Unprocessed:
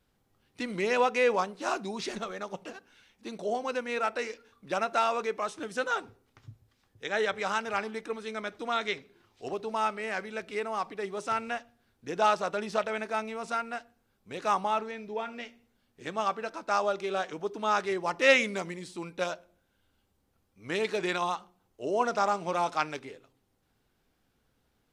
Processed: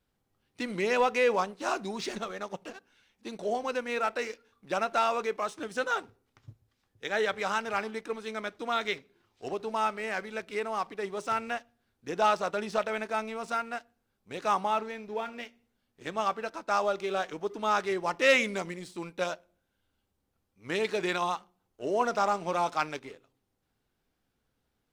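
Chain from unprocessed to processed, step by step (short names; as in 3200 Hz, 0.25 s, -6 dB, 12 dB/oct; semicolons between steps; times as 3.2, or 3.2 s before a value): sample leveller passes 1; gain -3.5 dB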